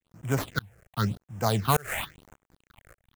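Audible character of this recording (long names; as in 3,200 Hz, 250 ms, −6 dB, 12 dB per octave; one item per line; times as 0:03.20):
a quantiser's noise floor 8 bits, dither none
tremolo saw up 1.7 Hz, depth 100%
aliases and images of a low sample rate 5,400 Hz, jitter 20%
phaser sweep stages 6, 0.94 Hz, lowest notch 240–4,300 Hz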